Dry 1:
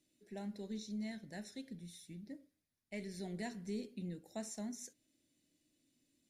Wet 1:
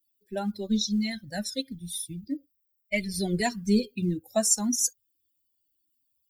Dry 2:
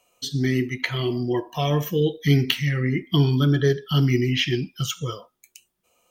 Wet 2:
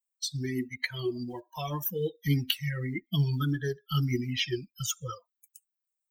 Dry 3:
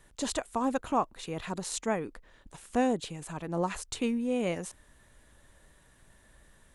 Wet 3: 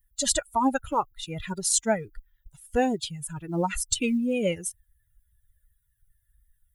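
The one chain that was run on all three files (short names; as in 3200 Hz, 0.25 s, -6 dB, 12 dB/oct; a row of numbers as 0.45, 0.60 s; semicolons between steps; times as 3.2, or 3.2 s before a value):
per-bin expansion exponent 2; high shelf 5500 Hz +10.5 dB; in parallel at +1 dB: compressor 16:1, threshold -31 dBFS; on the sum: short-mantissa float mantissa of 6-bit; cascading flanger falling 1.7 Hz; normalise peaks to -9 dBFS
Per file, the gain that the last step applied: +19.0, -3.0, +8.0 dB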